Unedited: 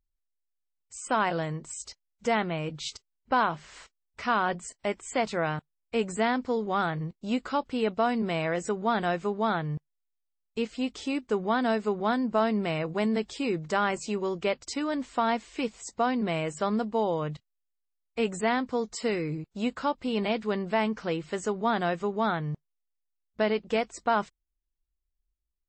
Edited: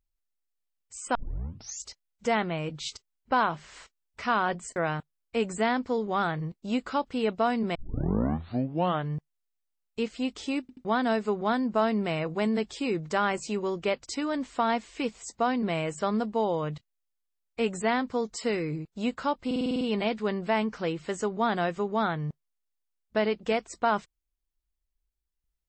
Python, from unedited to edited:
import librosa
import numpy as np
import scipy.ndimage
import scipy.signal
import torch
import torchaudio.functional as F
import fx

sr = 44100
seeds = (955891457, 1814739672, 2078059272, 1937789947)

y = fx.edit(x, sr, fx.tape_start(start_s=1.15, length_s=0.69),
    fx.cut(start_s=4.76, length_s=0.59),
    fx.tape_start(start_s=8.34, length_s=1.36),
    fx.stutter_over(start_s=11.2, slice_s=0.08, count=3),
    fx.stutter(start_s=20.05, slice_s=0.05, count=8), tone=tone)